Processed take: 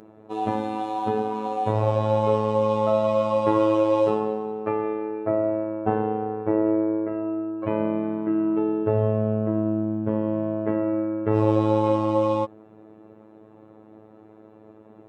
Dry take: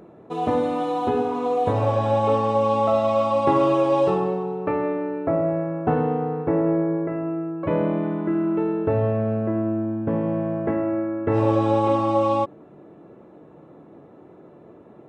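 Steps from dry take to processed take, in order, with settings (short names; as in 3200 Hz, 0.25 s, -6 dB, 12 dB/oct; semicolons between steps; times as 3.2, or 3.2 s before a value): robotiser 108 Hz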